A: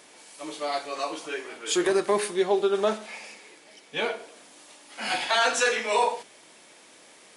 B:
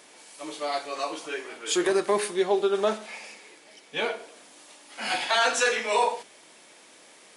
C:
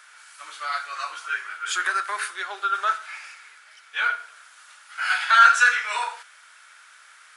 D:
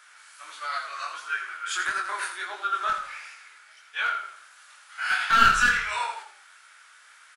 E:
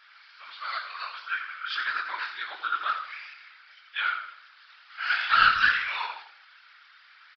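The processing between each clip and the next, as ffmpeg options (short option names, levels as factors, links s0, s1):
-af "lowshelf=f=110:g=-6"
-af "highpass=f=1400:t=q:w=8.1,volume=0.794"
-filter_complex "[0:a]aeval=exprs='clip(val(0),-1,0.168)':c=same,flanger=delay=18.5:depth=6.8:speed=1.5,asplit=5[s0][s1][s2][s3][s4];[s1]adelay=83,afreqshift=-33,volume=0.355[s5];[s2]adelay=166,afreqshift=-66,volume=0.124[s6];[s3]adelay=249,afreqshift=-99,volume=0.0437[s7];[s4]adelay=332,afreqshift=-132,volume=0.0151[s8];[s0][s5][s6][s7][s8]amix=inputs=5:normalize=0"
-af "tiltshelf=f=800:g=-8,afftfilt=real='hypot(re,im)*cos(2*PI*random(0))':imag='hypot(re,im)*sin(2*PI*random(1))':win_size=512:overlap=0.75,aresample=11025,aresample=44100"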